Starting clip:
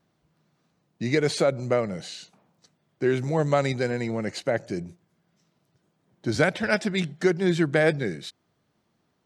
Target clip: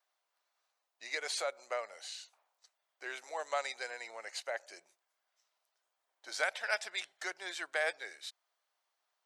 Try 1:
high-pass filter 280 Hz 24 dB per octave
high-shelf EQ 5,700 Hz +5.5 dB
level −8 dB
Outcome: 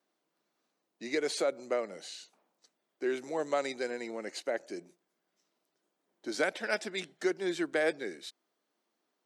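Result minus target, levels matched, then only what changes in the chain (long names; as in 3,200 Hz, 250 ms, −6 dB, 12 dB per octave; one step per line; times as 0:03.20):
250 Hz band +18.5 dB
change: high-pass filter 680 Hz 24 dB per octave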